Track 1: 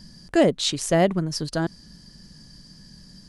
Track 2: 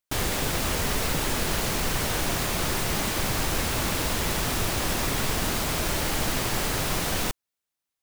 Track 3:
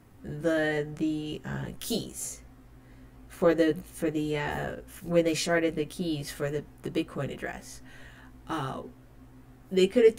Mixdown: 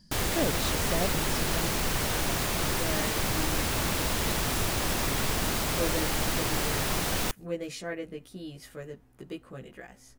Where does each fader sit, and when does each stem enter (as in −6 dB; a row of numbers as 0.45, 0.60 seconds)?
−12.5, −2.0, −10.0 decibels; 0.00, 0.00, 2.35 seconds